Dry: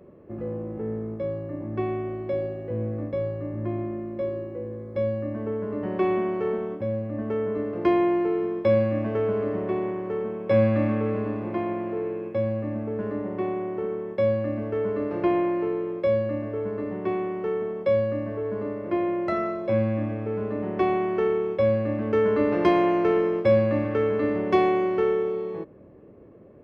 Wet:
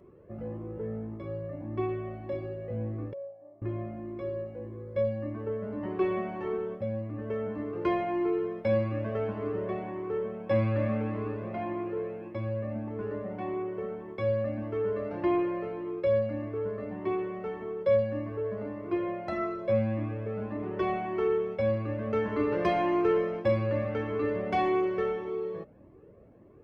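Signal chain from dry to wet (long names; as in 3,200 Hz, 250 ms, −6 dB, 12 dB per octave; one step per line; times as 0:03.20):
0:03.13–0:03.62: resonant band-pass 660 Hz, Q 8.2
flanger whose copies keep moving one way rising 1.7 Hz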